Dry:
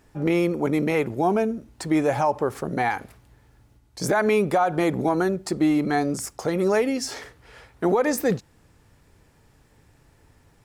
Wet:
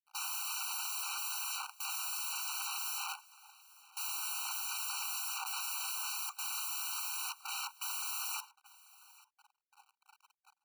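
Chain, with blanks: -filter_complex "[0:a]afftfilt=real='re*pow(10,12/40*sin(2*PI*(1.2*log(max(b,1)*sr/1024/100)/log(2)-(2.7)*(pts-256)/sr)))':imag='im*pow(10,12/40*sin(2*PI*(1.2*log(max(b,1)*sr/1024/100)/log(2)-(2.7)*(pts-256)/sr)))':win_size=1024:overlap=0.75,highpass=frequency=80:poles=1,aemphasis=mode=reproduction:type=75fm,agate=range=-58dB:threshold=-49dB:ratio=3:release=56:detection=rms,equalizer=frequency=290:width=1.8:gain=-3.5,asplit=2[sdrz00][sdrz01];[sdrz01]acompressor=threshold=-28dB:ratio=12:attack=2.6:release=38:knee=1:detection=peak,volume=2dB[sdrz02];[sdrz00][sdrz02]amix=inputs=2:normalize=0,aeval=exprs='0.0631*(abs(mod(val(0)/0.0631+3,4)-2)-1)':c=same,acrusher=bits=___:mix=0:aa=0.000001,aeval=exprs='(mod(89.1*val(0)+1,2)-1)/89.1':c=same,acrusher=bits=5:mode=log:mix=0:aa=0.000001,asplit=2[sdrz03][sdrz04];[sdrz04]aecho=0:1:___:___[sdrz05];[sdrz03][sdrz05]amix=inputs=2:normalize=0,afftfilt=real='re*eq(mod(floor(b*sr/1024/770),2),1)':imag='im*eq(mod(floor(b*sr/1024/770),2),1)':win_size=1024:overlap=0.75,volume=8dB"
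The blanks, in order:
10, 839, 0.0794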